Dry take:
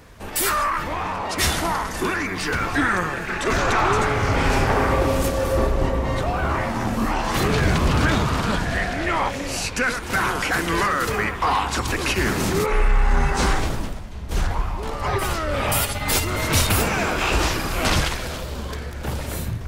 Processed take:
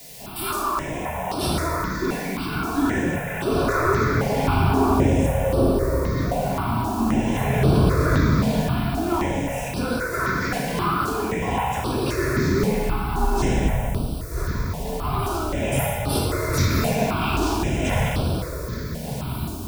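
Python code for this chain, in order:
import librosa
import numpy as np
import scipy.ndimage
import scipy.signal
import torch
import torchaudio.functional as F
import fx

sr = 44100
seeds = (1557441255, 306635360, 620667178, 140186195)

p1 = fx.peak_eq(x, sr, hz=560.0, db=4.0, octaves=2.1)
p2 = p1 + fx.echo_single(p1, sr, ms=126, db=-12.5, dry=0)
p3 = fx.quant_dither(p2, sr, seeds[0], bits=6, dither='triangular')
p4 = fx.highpass(p3, sr, hz=160.0, slope=6)
p5 = fx.low_shelf(p4, sr, hz=300.0, db=9.5)
p6 = fx.notch(p5, sr, hz=1600.0, q=28.0)
p7 = fx.room_shoebox(p6, sr, seeds[1], volume_m3=1100.0, walls='mixed', distance_m=3.1)
p8 = fx.phaser_held(p7, sr, hz=3.8, low_hz=340.0, high_hz=6800.0)
y = p8 * librosa.db_to_amplitude(-9.0)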